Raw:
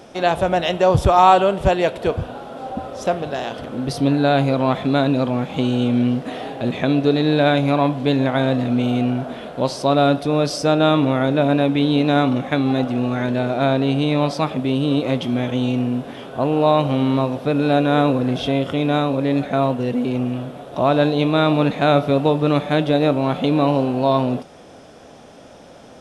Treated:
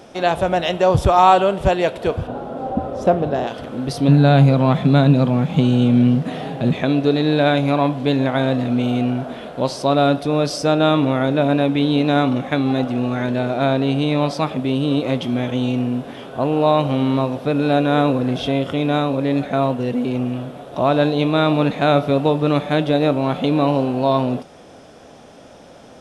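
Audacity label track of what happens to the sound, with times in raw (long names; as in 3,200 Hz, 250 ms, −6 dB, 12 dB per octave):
2.270000	3.470000	tilt shelving filter lows +7.5 dB, about 1,300 Hz
4.080000	6.730000	parametric band 160 Hz +15 dB 0.62 octaves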